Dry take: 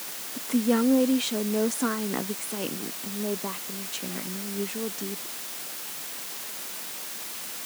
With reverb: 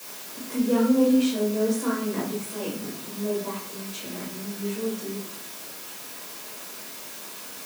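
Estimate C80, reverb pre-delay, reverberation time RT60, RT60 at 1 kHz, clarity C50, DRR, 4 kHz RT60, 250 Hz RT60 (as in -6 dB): 10.0 dB, 4 ms, 0.60 s, 0.55 s, 5.0 dB, -7.0 dB, 0.35 s, 0.75 s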